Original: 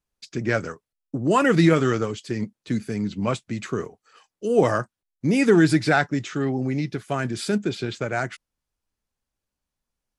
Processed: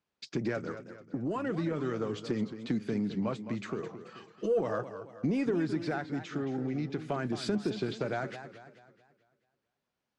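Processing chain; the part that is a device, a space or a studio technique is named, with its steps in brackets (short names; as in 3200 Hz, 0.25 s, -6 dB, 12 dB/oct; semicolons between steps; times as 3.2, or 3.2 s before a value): AM radio (BPF 140–4100 Hz; compressor 5:1, threshold -30 dBFS, peak gain reduction 16 dB; soft clip -21.5 dBFS, distortion -24 dB; tremolo 0.39 Hz, depth 34%); 3.82–4.61 comb 6.1 ms, depth 94%; dynamic EQ 2400 Hz, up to -6 dB, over -51 dBFS, Q 0.72; warbling echo 0.218 s, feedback 44%, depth 156 cents, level -11 dB; gain +3 dB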